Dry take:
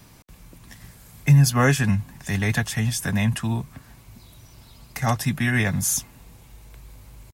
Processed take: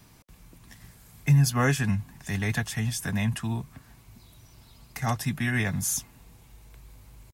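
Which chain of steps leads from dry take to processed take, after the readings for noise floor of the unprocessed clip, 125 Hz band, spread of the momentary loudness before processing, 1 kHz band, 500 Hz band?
-50 dBFS, -5.0 dB, 12 LU, -5.0 dB, -6.0 dB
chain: band-stop 550 Hz, Q 12; trim -5 dB

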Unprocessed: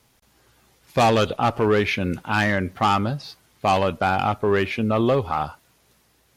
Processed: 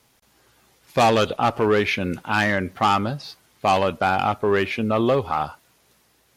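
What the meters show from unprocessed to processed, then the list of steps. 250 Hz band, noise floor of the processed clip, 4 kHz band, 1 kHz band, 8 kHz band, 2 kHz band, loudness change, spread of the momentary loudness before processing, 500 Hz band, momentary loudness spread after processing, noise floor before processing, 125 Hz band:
-0.5 dB, -62 dBFS, +1.0 dB, +1.0 dB, +1.0 dB, +1.0 dB, +0.5 dB, 8 LU, +0.5 dB, 8 LU, -62 dBFS, -2.5 dB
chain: bass shelf 140 Hz -6.5 dB; trim +1 dB

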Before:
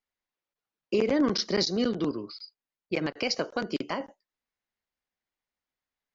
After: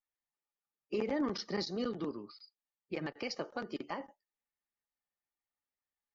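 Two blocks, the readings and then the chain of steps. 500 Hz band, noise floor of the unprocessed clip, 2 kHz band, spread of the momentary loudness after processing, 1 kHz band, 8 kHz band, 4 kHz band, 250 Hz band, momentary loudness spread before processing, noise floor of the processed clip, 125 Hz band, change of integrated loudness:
-9.0 dB, under -85 dBFS, -9.0 dB, 12 LU, -6.5 dB, no reading, -12.0 dB, -9.5 dB, 16 LU, under -85 dBFS, -9.0 dB, -9.5 dB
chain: coarse spectral quantiser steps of 15 dB; treble shelf 6.5 kHz -8.5 dB; small resonant body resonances 850/1200/1800 Hz, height 9 dB; trim -9 dB

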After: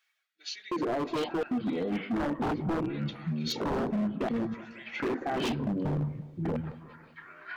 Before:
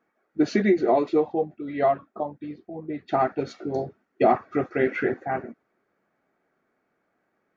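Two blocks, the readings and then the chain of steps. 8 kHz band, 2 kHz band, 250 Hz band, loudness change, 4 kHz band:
no reading, -5.5 dB, -3.0 dB, -7.0 dB, +7.0 dB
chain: reverse; compression 8:1, threshold -31 dBFS, peak gain reduction 17 dB; reverse; peak limiter -32 dBFS, peak gain reduction 10.5 dB; LFO high-pass square 0.7 Hz 240–3300 Hz; ever faster or slower copies 501 ms, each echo -6 st, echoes 2; wavefolder -33 dBFS; on a send: feedback echo behind a low-pass 182 ms, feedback 47%, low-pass 1.1 kHz, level -15.5 dB; on the sum: trim +8.5 dB

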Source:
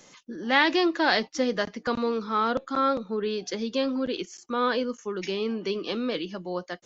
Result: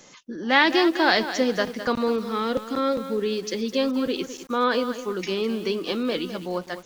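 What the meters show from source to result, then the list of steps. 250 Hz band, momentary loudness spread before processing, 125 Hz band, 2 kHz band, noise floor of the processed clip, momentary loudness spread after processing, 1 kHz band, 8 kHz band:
+3.5 dB, 10 LU, +3.5 dB, +3.0 dB, -47 dBFS, 10 LU, +1.5 dB, no reading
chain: time-frequency box 2.19–3.78 s, 580–1700 Hz -7 dB; bit-crushed delay 208 ms, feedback 35%, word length 7-bit, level -11 dB; trim +3 dB

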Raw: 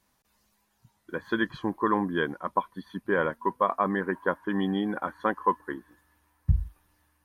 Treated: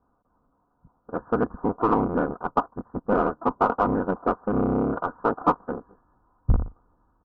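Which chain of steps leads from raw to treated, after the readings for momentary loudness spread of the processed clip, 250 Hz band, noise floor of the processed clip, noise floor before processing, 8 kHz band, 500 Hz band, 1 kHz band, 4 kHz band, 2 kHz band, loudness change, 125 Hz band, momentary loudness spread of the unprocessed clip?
11 LU, +4.0 dB, -70 dBFS, -72 dBFS, no reading, +4.5 dB, +3.5 dB, under -10 dB, -5.0 dB, +3.5 dB, +3.0 dB, 12 LU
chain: cycle switcher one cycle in 3, inverted; steep low-pass 1.4 kHz 72 dB/octave; comb 4.1 ms, depth 33%; in parallel at -10 dB: saturation -25.5 dBFS, distortion -8 dB; on the sum: trim +2.5 dB

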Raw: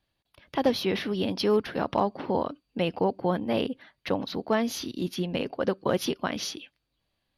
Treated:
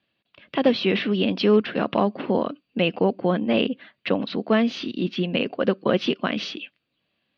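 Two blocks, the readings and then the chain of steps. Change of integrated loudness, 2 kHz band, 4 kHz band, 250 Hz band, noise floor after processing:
+5.0 dB, +7.0 dB, +5.5 dB, +6.5 dB, -76 dBFS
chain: cabinet simulation 160–4000 Hz, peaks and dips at 210 Hz +5 dB, 870 Hz -7 dB, 2.7 kHz +6 dB; trim +5 dB

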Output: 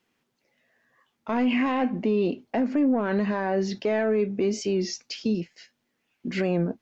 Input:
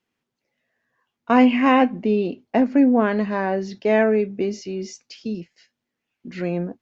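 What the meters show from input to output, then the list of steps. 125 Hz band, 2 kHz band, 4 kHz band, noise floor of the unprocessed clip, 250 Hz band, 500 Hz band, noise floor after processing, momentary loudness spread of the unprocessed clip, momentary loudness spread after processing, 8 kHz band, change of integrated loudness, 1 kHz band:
-0.5 dB, -6.0 dB, -0.5 dB, -82 dBFS, -5.5 dB, -4.0 dB, -76 dBFS, 15 LU, 8 LU, no reading, -6.0 dB, -8.5 dB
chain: in parallel at 0 dB: compression, threshold -29 dBFS, peak gain reduction 18 dB; on the sum: saturation -5.5 dBFS, distortion -20 dB; peaking EQ 62 Hz -5 dB 1.8 oct; peak limiter -16.5 dBFS, peak gain reduction 10 dB; warped record 33 1/3 rpm, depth 100 cents

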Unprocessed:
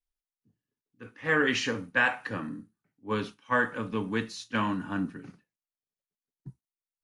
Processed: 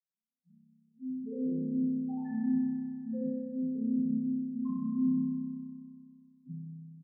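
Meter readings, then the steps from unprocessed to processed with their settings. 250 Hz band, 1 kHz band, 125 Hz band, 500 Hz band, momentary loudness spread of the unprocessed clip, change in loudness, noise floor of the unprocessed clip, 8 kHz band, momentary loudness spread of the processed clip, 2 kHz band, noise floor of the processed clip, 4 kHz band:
+4.5 dB, -22.0 dB, -3.5 dB, -12.0 dB, 11 LU, -4.0 dB, under -85 dBFS, under -35 dB, 15 LU, under -35 dB, under -85 dBFS, under -40 dB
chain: vocoder on a broken chord major triad, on F3, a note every 120 ms; bass shelf 310 Hz +10 dB; peak limiter -28.5 dBFS, peak gain reduction 17.5 dB; speakerphone echo 170 ms, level -9 dB; loudest bins only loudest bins 1; spring tank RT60 2.1 s, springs 31 ms, chirp 50 ms, DRR -8.5 dB; trim -1.5 dB

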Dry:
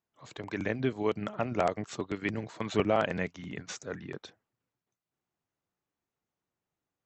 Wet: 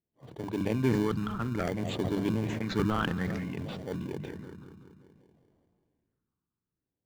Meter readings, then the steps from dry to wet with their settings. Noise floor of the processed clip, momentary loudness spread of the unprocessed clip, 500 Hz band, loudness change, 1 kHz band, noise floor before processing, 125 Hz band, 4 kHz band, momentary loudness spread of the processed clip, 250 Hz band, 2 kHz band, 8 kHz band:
under -85 dBFS, 14 LU, -2.5 dB, +1.0 dB, -2.5 dB, under -85 dBFS, +6.5 dB, +1.5 dB, 14 LU, +4.5 dB, -1.5 dB, -3.5 dB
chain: filtered feedback delay 191 ms, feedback 53%, low-pass 4.2 kHz, level -18.5 dB; phase shifter stages 6, 0.58 Hz, lowest notch 580–1900 Hz; level-controlled noise filter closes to 970 Hz, open at -28.5 dBFS; in parallel at -6 dB: sample-rate reducer 1.3 kHz, jitter 0%; on the sum: treble shelf 4.7 kHz -4.5 dB; hum notches 50/100/150/200 Hz; decay stretcher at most 23 dB/s

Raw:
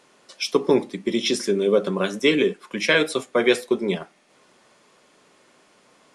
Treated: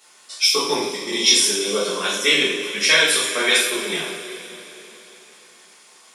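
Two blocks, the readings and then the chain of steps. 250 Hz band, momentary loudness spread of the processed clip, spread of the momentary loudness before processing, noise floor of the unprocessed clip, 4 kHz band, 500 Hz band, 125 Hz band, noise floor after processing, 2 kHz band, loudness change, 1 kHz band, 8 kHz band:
-6.0 dB, 14 LU, 7 LU, -58 dBFS, +11.0 dB, -4.0 dB, -8.0 dB, -50 dBFS, +6.0 dB, +4.5 dB, +4.0 dB, +15.0 dB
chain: spectral sustain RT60 0.36 s; tilt EQ +4 dB/octave; two-slope reverb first 0.51 s, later 3.7 s, from -15 dB, DRR -7.5 dB; trim -7 dB

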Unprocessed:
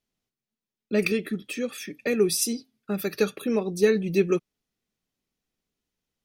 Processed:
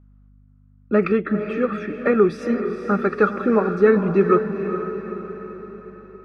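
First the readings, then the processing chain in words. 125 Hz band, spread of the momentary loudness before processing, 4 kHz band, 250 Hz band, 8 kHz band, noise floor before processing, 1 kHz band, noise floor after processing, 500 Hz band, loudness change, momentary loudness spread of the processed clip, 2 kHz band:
+7.0 dB, 10 LU, under -10 dB, +7.0 dB, under -20 dB, under -85 dBFS, +17.0 dB, -53 dBFS, +6.5 dB, +5.5 dB, 17 LU, +5.0 dB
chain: in parallel at +1 dB: peak limiter -16.5 dBFS, peak gain reduction 8 dB; on the sum: resonant low-pass 1.3 kHz, resonance Q 5.2; hum 50 Hz, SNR 29 dB; echo that smears into a reverb 451 ms, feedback 52%, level -8.5 dB

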